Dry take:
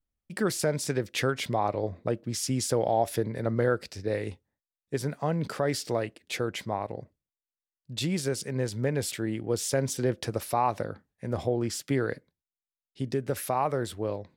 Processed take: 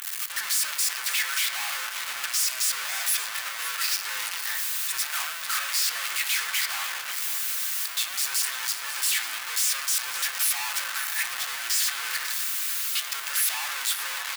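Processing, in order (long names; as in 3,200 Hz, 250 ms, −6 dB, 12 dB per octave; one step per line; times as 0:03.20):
sign of each sample alone
high-pass filter 1,200 Hz 24 dB per octave
high-shelf EQ 8,100 Hz +5 dB
in parallel at −4.5 dB: bit-depth reduction 8 bits, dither none
on the sum: surface crackle 51 per second −40 dBFS
single-tap delay 544 ms −12.5 dB
on a send at −4 dB: convolution reverb RT60 0.70 s, pre-delay 3 ms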